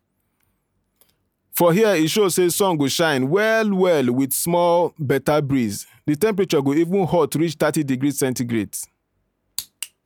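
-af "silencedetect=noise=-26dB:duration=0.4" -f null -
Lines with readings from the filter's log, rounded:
silence_start: 0.00
silence_end: 1.55 | silence_duration: 1.55
silence_start: 8.84
silence_end: 9.58 | silence_duration: 0.75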